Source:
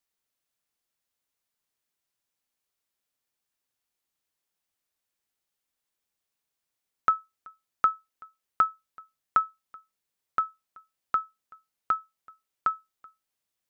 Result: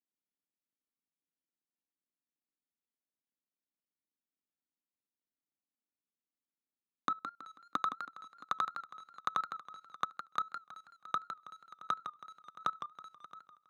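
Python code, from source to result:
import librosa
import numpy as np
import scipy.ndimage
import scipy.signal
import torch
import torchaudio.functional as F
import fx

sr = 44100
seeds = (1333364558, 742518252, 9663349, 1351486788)

y = fx.dead_time(x, sr, dead_ms=0.16)
y = fx.env_lowpass_down(y, sr, base_hz=850.0, full_db=-29.0)
y = fx.peak_eq(y, sr, hz=270.0, db=fx.steps((0.0, 12.0), (7.11, -4.5)), octaves=1.0)
y = fx.echo_feedback(y, sr, ms=671, feedback_pct=17, wet_db=-12.0)
y = fx.rider(y, sr, range_db=10, speed_s=0.5)
y = scipy.signal.sosfilt(scipy.signal.butter(4, 150.0, 'highpass', fs=sr, output='sos'), y)
y = fx.level_steps(y, sr, step_db=19)
y = fx.lowpass(y, sr, hz=2200.0, slope=6)
y = fx.low_shelf(y, sr, hz=210.0, db=12.0)
y = fx.echo_warbled(y, sr, ms=162, feedback_pct=35, rate_hz=2.8, cents=135, wet_db=-9)
y = y * librosa.db_to_amplitude(8.0)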